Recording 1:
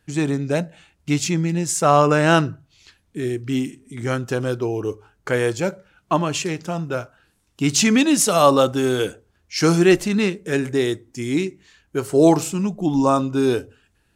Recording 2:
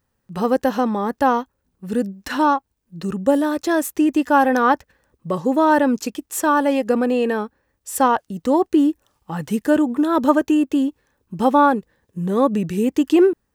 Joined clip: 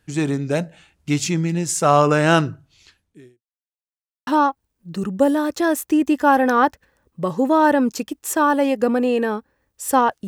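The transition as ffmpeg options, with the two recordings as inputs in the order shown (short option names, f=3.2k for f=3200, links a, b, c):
-filter_complex "[0:a]apad=whole_dur=10.27,atrim=end=10.27,asplit=2[a][b];[a]atrim=end=3.42,asetpts=PTS-STARTPTS,afade=t=out:st=2.82:d=0.6:c=qua[c];[b]atrim=start=3.42:end=4.27,asetpts=PTS-STARTPTS,volume=0[d];[1:a]atrim=start=2.34:end=8.34,asetpts=PTS-STARTPTS,afade=t=in:d=0.004:c=hsin[e];[c][d][e]concat=n=3:v=0:a=1"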